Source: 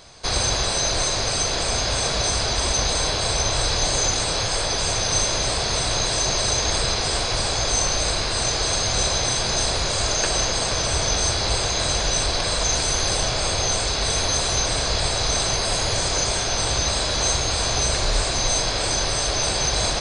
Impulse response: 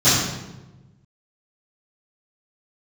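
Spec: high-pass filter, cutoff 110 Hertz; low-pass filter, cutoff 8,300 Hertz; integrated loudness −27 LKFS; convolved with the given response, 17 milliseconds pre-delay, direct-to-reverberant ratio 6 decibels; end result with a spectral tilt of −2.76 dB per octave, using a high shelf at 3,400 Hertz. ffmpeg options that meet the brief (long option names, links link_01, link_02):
-filter_complex "[0:a]highpass=110,lowpass=8300,highshelf=frequency=3400:gain=-5.5,asplit=2[link_01][link_02];[1:a]atrim=start_sample=2205,adelay=17[link_03];[link_02][link_03]afir=irnorm=-1:irlink=0,volume=-28dB[link_04];[link_01][link_04]amix=inputs=2:normalize=0,volume=-4.5dB"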